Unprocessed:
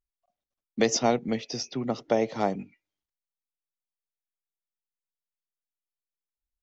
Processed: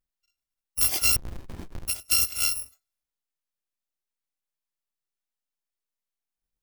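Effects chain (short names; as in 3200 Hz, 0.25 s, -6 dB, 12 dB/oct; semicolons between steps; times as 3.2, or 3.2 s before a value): FFT order left unsorted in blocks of 256 samples; harmonic-percussive split harmonic +7 dB; 1.16–1.88 running maximum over 65 samples; gain -3 dB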